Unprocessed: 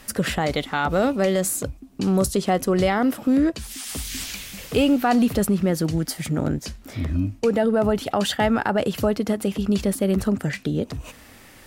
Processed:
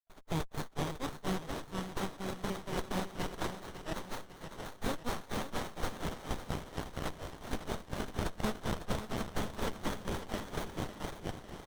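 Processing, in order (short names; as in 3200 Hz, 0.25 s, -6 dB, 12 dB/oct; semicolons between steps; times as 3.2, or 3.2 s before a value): spectral gate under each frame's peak -30 dB weak; HPF 540 Hz 24 dB/oct; resonant high shelf 2000 Hz +12.5 dB, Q 3; compressor, threshold -29 dBFS, peak gain reduction 11 dB; grains 0.188 s, grains 4.2/s; three bands offset in time lows, highs, mids 30/500 ms, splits 900/2800 Hz; overdrive pedal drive 15 dB, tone 4600 Hz, clips at -14.5 dBFS; on a send: feedback echo 0.551 s, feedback 53%, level -11 dB; on the sum: running maximum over 17 samples; gain +1.5 dB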